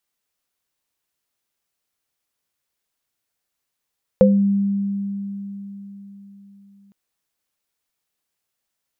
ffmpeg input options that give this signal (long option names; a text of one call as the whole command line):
ffmpeg -f lavfi -i "aevalsrc='0.282*pow(10,-3*t/4.24)*sin(2*PI*199*t)+0.562*pow(10,-3*t/0.25)*sin(2*PI*515*t)':duration=2.71:sample_rate=44100" out.wav